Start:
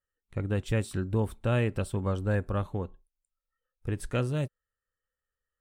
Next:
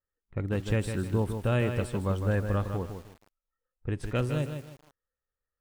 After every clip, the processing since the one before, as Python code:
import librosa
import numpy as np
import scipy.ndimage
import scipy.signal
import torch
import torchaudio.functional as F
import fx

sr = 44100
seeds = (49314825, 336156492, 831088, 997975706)

y = fx.env_lowpass(x, sr, base_hz=1400.0, full_db=-25.0)
y = fx.echo_crushed(y, sr, ms=156, feedback_pct=35, bits=8, wet_db=-7.0)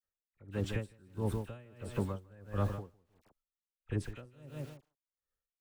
y = fx.dispersion(x, sr, late='lows', ms=43.0, hz=1400.0)
y = y * 10.0 ** (-29 * (0.5 - 0.5 * np.cos(2.0 * np.pi * 1.5 * np.arange(len(y)) / sr)) / 20.0)
y = y * librosa.db_to_amplitude(-1.5)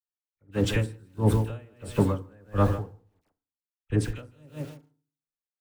y = fx.rev_fdn(x, sr, rt60_s=0.55, lf_ratio=1.35, hf_ratio=0.4, size_ms=20.0, drr_db=10.5)
y = fx.band_widen(y, sr, depth_pct=70)
y = y * librosa.db_to_amplitude(8.5)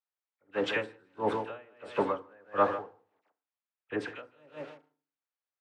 y = fx.bandpass_edges(x, sr, low_hz=580.0, high_hz=2400.0)
y = y * librosa.db_to_amplitude(4.0)